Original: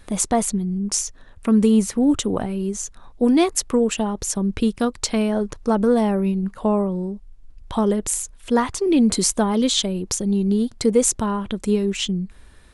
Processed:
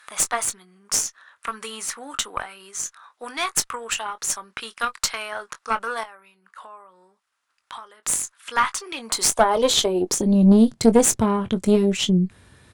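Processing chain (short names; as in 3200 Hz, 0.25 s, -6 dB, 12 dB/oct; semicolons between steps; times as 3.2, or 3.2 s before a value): 6.03–8.03 compressor 8:1, threshold -32 dBFS, peak gain reduction 16.5 dB; high-pass sweep 1300 Hz -> 110 Hz, 8.89–10.96; tube stage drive 10 dB, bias 0.7; doubler 22 ms -11.5 dB; gain +4.5 dB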